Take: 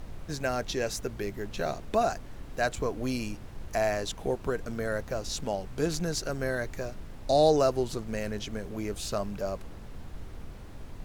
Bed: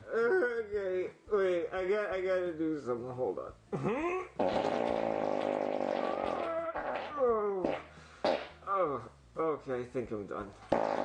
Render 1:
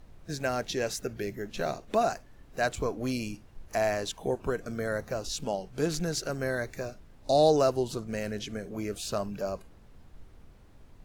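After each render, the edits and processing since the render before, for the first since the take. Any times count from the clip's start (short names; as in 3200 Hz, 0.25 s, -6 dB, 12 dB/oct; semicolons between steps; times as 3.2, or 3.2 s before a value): noise print and reduce 11 dB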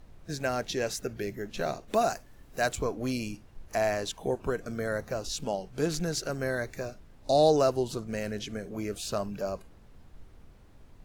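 1.88–2.77 high shelf 7000 Hz +8.5 dB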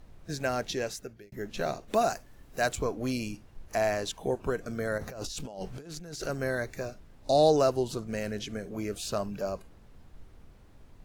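0.69–1.32 fade out; 4.98–6.26 negative-ratio compressor -40 dBFS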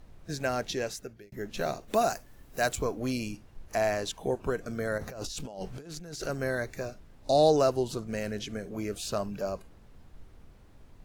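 1.52–3 high shelf 11000 Hz +7 dB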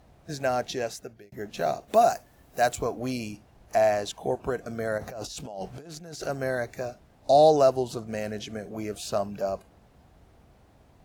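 HPF 54 Hz; bell 710 Hz +7.5 dB 0.57 oct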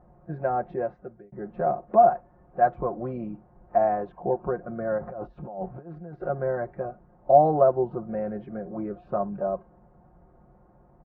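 LPF 1300 Hz 24 dB/oct; comb 5.6 ms, depth 72%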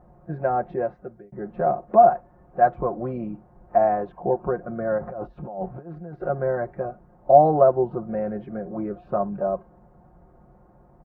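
gain +3 dB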